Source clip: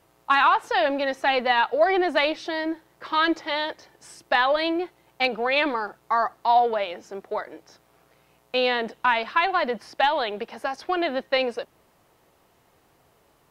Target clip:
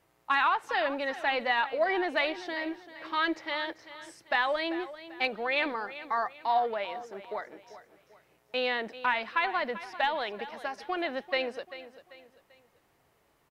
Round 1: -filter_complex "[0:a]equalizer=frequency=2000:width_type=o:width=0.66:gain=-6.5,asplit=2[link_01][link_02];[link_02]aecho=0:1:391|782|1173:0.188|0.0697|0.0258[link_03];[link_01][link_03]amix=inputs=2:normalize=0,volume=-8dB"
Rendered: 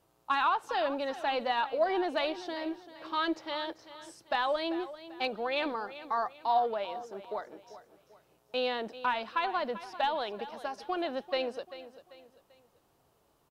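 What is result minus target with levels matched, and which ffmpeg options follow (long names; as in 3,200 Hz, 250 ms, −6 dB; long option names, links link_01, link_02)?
2,000 Hz band −5.0 dB
-filter_complex "[0:a]equalizer=frequency=2000:width_type=o:width=0.66:gain=4.5,asplit=2[link_01][link_02];[link_02]aecho=0:1:391|782|1173:0.188|0.0697|0.0258[link_03];[link_01][link_03]amix=inputs=2:normalize=0,volume=-8dB"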